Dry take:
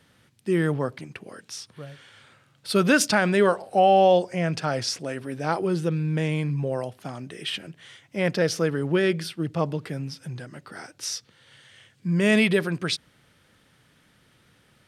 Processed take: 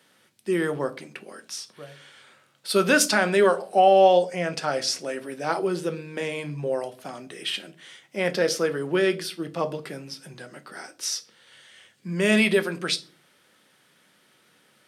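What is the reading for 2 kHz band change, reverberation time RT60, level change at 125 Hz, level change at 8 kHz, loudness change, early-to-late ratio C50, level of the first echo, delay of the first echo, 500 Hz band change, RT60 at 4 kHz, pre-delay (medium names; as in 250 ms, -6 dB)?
+1.0 dB, 0.40 s, -8.0 dB, +2.5 dB, +0.5 dB, 19.5 dB, no echo, no echo, +1.0 dB, 0.30 s, 4 ms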